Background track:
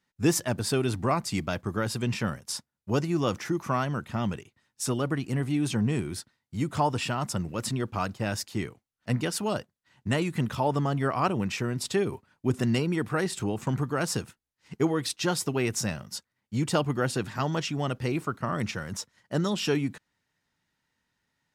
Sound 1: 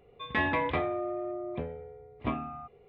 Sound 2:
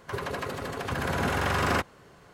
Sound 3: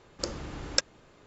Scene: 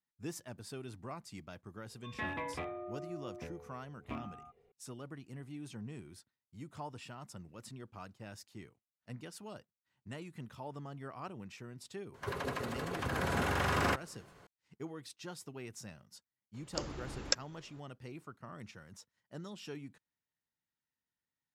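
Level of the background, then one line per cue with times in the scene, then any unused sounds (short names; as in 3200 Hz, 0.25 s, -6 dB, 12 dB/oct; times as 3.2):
background track -19 dB
1.84 add 1 -11 dB + rattling part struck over -34 dBFS, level -29 dBFS
12.14 add 2 -5.5 dB
16.54 add 3 -5.5 dB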